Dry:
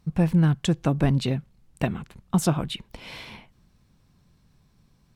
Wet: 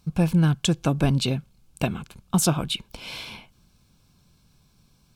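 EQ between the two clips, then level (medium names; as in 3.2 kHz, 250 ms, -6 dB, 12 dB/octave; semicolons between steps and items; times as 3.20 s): Butterworth band-stop 1.9 kHz, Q 5; treble shelf 2.3 kHz +8.5 dB; 0.0 dB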